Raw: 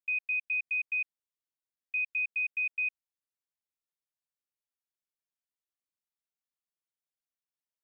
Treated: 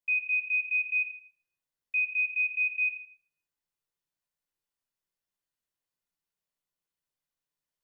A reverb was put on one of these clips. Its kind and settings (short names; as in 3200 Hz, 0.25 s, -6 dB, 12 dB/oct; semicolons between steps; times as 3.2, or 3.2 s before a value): shoebox room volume 860 m³, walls furnished, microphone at 4.9 m; gain -2.5 dB